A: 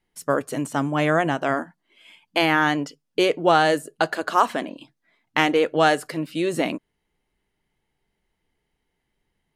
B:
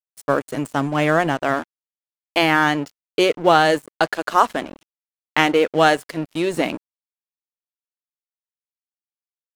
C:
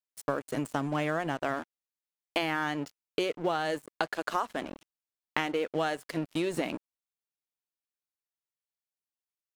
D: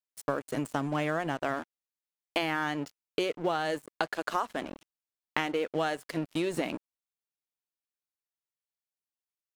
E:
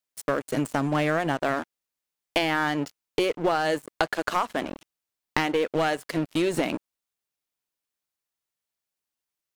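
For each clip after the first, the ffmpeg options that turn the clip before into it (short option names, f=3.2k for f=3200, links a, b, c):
-af "aeval=exprs='sgn(val(0))*max(abs(val(0))-0.015,0)':c=same,volume=3.5dB"
-af "acompressor=threshold=-24dB:ratio=6,volume=-3dB"
-af anull
-af "aeval=exprs='clip(val(0),-1,0.0531)':c=same,volume=6.5dB"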